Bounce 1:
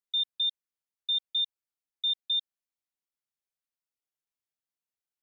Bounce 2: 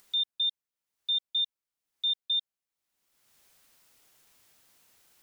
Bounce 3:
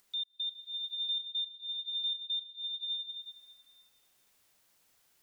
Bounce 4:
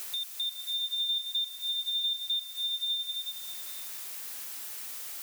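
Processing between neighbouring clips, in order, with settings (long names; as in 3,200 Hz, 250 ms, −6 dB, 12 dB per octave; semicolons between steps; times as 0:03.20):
upward compression, threshold −41 dBFS
slow-attack reverb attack 800 ms, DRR 2.5 dB; level −7.5 dB
automatic gain control gain up to 8 dB; background noise blue −45 dBFS; multiband upward and downward compressor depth 70%; level −2.5 dB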